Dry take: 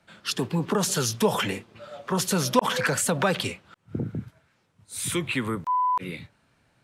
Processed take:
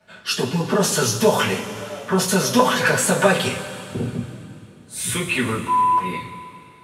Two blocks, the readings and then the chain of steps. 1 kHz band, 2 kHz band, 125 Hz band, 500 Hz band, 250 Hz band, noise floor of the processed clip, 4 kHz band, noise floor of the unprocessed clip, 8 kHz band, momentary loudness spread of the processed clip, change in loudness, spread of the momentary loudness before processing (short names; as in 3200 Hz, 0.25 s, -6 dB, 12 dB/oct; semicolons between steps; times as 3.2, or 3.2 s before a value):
+6.5 dB, +8.0 dB, +5.0 dB, +7.0 dB, +5.5 dB, -46 dBFS, +5.5 dB, -67 dBFS, +5.5 dB, 14 LU, +6.0 dB, 14 LU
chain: two-slope reverb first 0.22 s, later 2.8 s, from -18 dB, DRR -8 dB; gain -1.5 dB